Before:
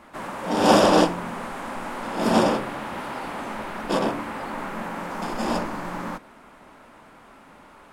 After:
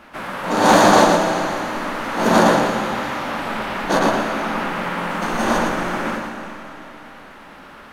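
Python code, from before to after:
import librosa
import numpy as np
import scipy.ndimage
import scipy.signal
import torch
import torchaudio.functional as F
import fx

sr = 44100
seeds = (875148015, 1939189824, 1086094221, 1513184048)

p1 = fx.high_shelf(x, sr, hz=9000.0, db=-8.0)
p2 = fx.rider(p1, sr, range_db=4, speed_s=2.0)
p3 = p1 + (p2 * librosa.db_to_amplitude(2.5))
p4 = np.clip(10.0 ** (1.5 / 20.0) * p3, -1.0, 1.0) / 10.0 ** (1.5 / 20.0)
p5 = fx.formant_shift(p4, sr, semitones=4)
p6 = p5 + fx.echo_single(p5, sr, ms=115, db=-5.0, dry=0)
p7 = fx.rev_freeverb(p6, sr, rt60_s=3.2, hf_ratio=0.95, predelay_ms=85, drr_db=6.5)
y = p7 * librosa.db_to_amplitude(-4.0)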